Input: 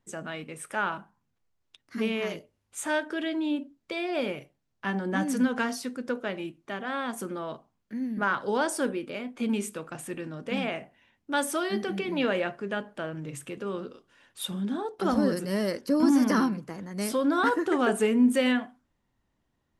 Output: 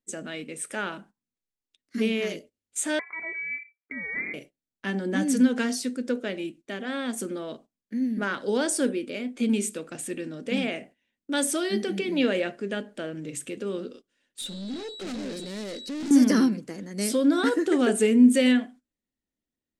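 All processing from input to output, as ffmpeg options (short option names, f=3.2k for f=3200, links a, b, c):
-filter_complex "[0:a]asettb=1/sr,asplit=3[a][b][c];[a]atrim=end=2.994[d];[b]atrim=start=2.99:end=4.34,asetpts=PTS-STARTPTS,afade=t=in:d=0.004:c=qsin,afade=t=out:st=1.346:d=0.004:c=qsin,highpass=f=630:p=1,lowpass=f=2.2k:t=q:w=0.5098,lowpass=f=2.2k:t=q:w=0.6013,lowpass=f=2.2k:t=q:w=0.9,lowpass=f=2.2k:t=q:w=2.563,afreqshift=-2600[e];[c]atrim=start=4.336[f];[d][e]acrossfade=d=0.004:c1=hsin:c2=qsin[g];[g][f]acrossfade=d=0.004:c1=qsin:c2=hsin,asettb=1/sr,asplit=3[h][i][j];[h]atrim=end=14.414[k];[i]atrim=start=14.41:end=16.11,asetpts=PTS-STARTPTS,afade=t=in:d=0.004:c=qsin,afade=t=out:st=1.696:d=0.004:c=qsin,lowpass=8.1k,aeval=exprs='val(0)+0.00708*sin(2*PI*3900*n/s)':c=same,aeval=exprs='(tanh(56.2*val(0)+0.35)-tanh(0.35))/56.2':c=same[l];[j]atrim=start=16.106[m];[k][l]acrossfade=d=0.004:c1=hsin:c2=qsin[n];[n][m]acrossfade=d=0.004:c1=qsin:c2=hsin,agate=range=-15dB:threshold=-49dB:ratio=16:detection=peak,equalizer=f=125:t=o:w=1:g=-5,equalizer=f=250:t=o:w=1:g=8,equalizer=f=500:t=o:w=1:g=5,equalizer=f=1k:t=o:w=1:g=-8,equalizer=f=2k:t=o:w=1:g=4,equalizer=f=4k:t=o:w=1:g=5,equalizer=f=8k:t=o:w=1:g=10,volume=-2.5dB"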